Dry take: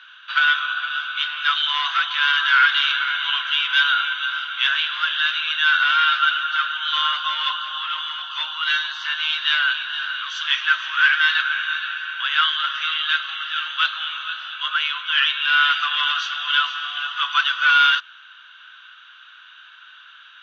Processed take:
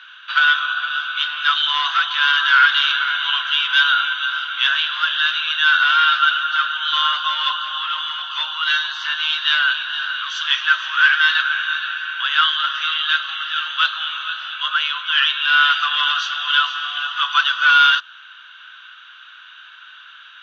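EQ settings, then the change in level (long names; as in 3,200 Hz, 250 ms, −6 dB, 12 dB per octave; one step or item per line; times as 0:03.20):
dynamic equaliser 2,200 Hz, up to −6 dB, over −37 dBFS, Q 3.1
+3.5 dB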